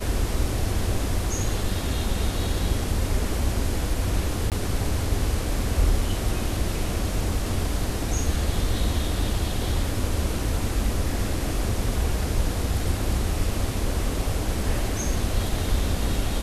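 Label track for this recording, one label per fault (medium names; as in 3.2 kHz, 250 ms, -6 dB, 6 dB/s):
4.500000	4.520000	dropout 18 ms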